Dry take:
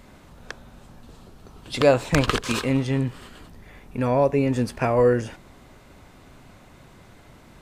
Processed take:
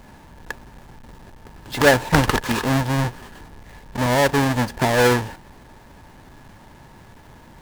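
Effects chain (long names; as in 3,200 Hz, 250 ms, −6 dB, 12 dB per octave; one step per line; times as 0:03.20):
each half-wave held at its own peak
hollow resonant body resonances 900/1,700 Hz, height 11 dB, ringing for 30 ms
highs frequency-modulated by the lows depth 0.27 ms
level −2.5 dB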